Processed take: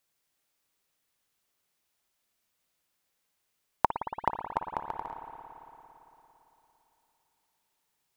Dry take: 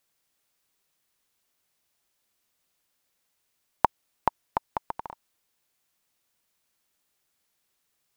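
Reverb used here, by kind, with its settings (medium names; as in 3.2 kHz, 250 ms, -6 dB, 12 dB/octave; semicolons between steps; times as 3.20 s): spring tank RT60 3.5 s, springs 56 ms, chirp 75 ms, DRR 5 dB; trim -3 dB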